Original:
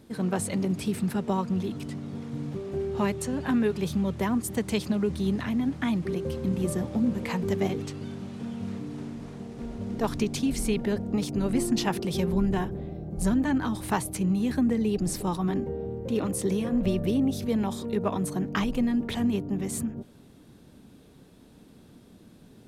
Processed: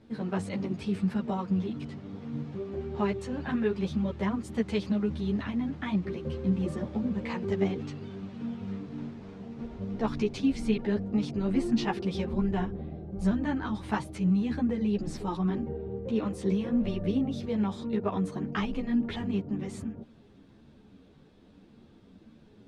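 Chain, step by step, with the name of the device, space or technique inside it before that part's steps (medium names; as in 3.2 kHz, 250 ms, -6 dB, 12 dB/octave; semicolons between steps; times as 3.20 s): string-machine ensemble chorus (three-phase chorus; low-pass 4.2 kHz 12 dB/octave)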